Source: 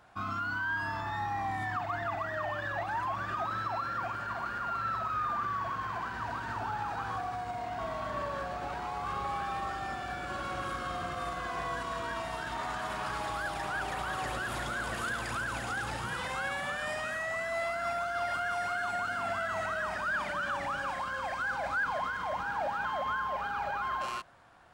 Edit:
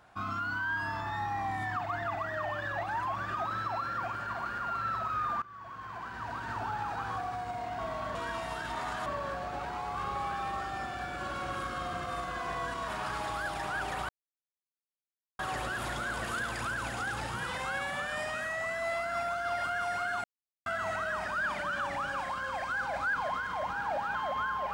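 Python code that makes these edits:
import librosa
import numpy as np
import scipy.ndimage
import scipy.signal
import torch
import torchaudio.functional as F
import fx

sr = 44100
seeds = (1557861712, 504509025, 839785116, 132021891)

y = fx.edit(x, sr, fx.fade_in_from(start_s=5.42, length_s=1.13, floor_db=-20.0),
    fx.move(start_s=11.97, length_s=0.91, to_s=8.15),
    fx.insert_silence(at_s=14.09, length_s=1.3),
    fx.silence(start_s=18.94, length_s=0.42), tone=tone)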